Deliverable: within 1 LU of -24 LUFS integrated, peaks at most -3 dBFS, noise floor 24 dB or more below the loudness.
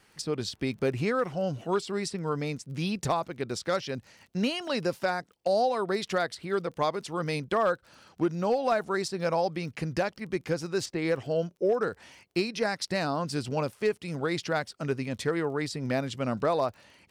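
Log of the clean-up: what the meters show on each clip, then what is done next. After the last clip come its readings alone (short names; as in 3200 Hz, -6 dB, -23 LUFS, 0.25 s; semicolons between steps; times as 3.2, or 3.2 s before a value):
ticks 21/s; loudness -30.0 LUFS; peak -17.0 dBFS; loudness target -24.0 LUFS
-> de-click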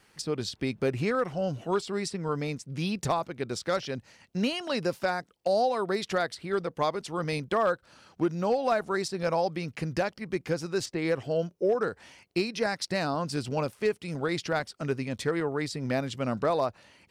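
ticks 0/s; loudness -30.0 LUFS; peak -16.0 dBFS; loudness target -24.0 LUFS
-> gain +6 dB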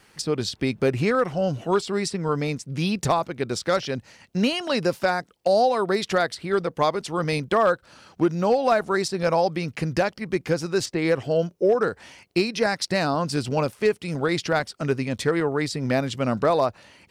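loudness -24.0 LUFS; peak -10.0 dBFS; noise floor -60 dBFS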